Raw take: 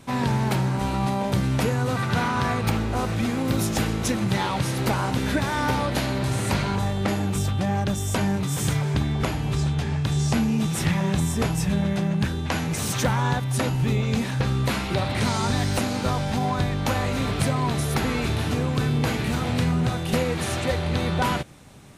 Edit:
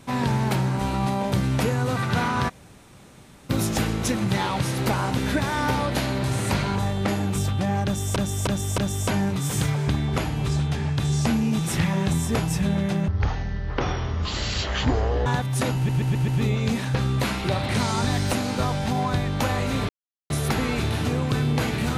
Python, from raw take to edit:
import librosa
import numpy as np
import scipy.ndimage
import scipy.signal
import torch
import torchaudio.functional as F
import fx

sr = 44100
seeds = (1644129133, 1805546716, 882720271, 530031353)

y = fx.edit(x, sr, fx.room_tone_fill(start_s=2.49, length_s=1.01, crossfade_s=0.02),
    fx.repeat(start_s=7.85, length_s=0.31, count=4),
    fx.speed_span(start_s=12.15, length_s=1.09, speed=0.5),
    fx.stutter(start_s=13.74, slice_s=0.13, count=5),
    fx.silence(start_s=17.35, length_s=0.41), tone=tone)